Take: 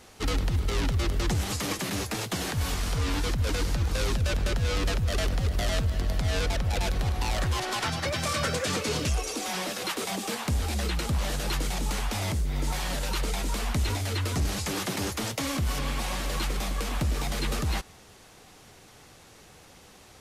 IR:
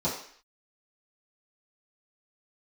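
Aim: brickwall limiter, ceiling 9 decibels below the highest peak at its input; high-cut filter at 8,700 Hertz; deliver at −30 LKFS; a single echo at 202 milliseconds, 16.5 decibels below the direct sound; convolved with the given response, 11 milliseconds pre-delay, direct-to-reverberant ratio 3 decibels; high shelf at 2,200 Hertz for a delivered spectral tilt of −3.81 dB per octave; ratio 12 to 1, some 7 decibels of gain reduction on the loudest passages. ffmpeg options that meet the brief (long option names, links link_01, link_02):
-filter_complex "[0:a]lowpass=8700,highshelf=frequency=2200:gain=7.5,acompressor=threshold=-29dB:ratio=12,alimiter=level_in=2.5dB:limit=-24dB:level=0:latency=1,volume=-2.5dB,aecho=1:1:202:0.15,asplit=2[link_01][link_02];[1:a]atrim=start_sample=2205,adelay=11[link_03];[link_02][link_03]afir=irnorm=-1:irlink=0,volume=-12.5dB[link_04];[link_01][link_04]amix=inputs=2:normalize=0,volume=2.5dB"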